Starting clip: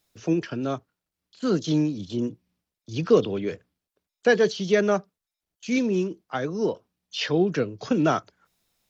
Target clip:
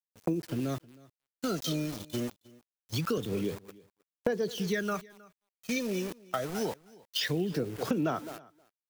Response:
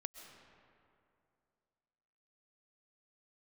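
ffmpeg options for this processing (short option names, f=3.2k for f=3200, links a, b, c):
-filter_complex "[0:a]asplit=2[a][b];[b]adelay=210,highpass=300,lowpass=3.4k,asoftclip=type=hard:threshold=-15.5dB,volume=-16dB[c];[a][c]amix=inputs=2:normalize=0,aphaser=in_gain=1:out_gain=1:delay=1.7:decay=0.63:speed=0.25:type=sinusoidal,asettb=1/sr,asplit=3[d][e][f];[d]atrim=end=1.934[g];[e]atrim=start=1.93:end=3.18,asetpts=PTS-STARTPTS,afade=t=in:d=0.004:c=qsin,afade=t=out:st=1.246:d=0.004:c=qsin,highpass=f=100:w=0.5412,highpass=f=100:w=1.3066[h];[f]atrim=start=3.176[i];[g][h]acrossfade=d=0.004:c1=hsin:c2=qsin[j];[j][i]acrossfade=d=0.004:c1=qsin:c2=hsin,aeval=exprs='val(0)*gte(abs(val(0)),0.0178)':c=same,agate=range=-17dB:threshold=-35dB:ratio=16:detection=peak,crystalizer=i=1:c=0,acompressor=threshold=-29dB:ratio=5,asplit=2[k][l];[l]aecho=0:1:314:0.0708[m];[k][m]amix=inputs=2:normalize=0"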